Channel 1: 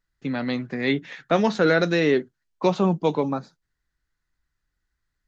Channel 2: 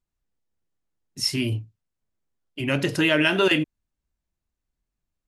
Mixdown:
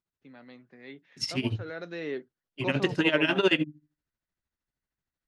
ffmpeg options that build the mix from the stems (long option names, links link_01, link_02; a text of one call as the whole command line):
ffmpeg -i stem1.wav -i stem2.wav -filter_complex "[0:a]bass=frequency=250:gain=-6,treble=frequency=4000:gain=-4,volume=-13dB,afade=type=in:start_time=1.64:duration=0.48:silence=0.375837[link_01];[1:a]highpass=77,bandreject=frequency=50:width_type=h:width=6,bandreject=frequency=100:width_type=h:width=6,bandreject=frequency=150:width_type=h:width=6,bandreject=frequency=200:width_type=h:width=6,bandreject=frequency=250:width_type=h:width=6,bandreject=frequency=300:width_type=h:width=6,tremolo=f=13:d=0.83,volume=-0.5dB[link_02];[link_01][link_02]amix=inputs=2:normalize=0,lowpass=5800" out.wav